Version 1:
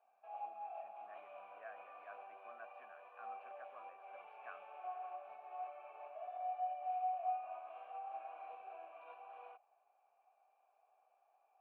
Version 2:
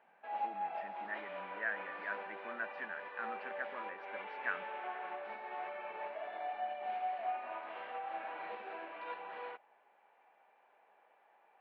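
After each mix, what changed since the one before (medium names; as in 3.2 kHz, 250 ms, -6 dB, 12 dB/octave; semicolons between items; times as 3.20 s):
master: remove vowel filter a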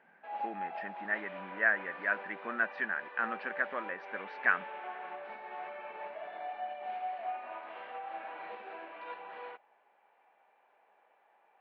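speech +10.0 dB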